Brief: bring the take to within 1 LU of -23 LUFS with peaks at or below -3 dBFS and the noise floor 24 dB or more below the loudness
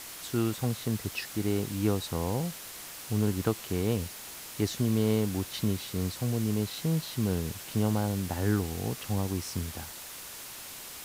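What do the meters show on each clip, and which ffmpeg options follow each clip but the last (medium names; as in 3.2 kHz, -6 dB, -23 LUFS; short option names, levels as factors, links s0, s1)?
noise floor -44 dBFS; noise floor target -56 dBFS; loudness -31.5 LUFS; peak level -14.0 dBFS; loudness target -23.0 LUFS
-> -af "afftdn=nr=12:nf=-44"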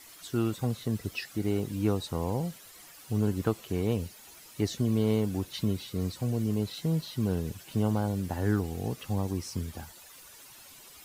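noise floor -52 dBFS; noise floor target -55 dBFS
-> -af "afftdn=nr=6:nf=-52"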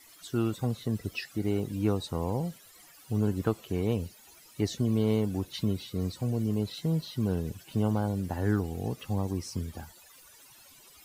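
noise floor -55 dBFS; loudness -31.0 LUFS; peak level -14.5 dBFS; loudness target -23.0 LUFS
-> -af "volume=2.51"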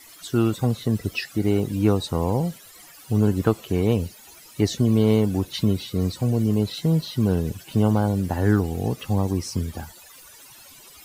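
loudness -23.0 LUFS; peak level -6.5 dBFS; noise floor -47 dBFS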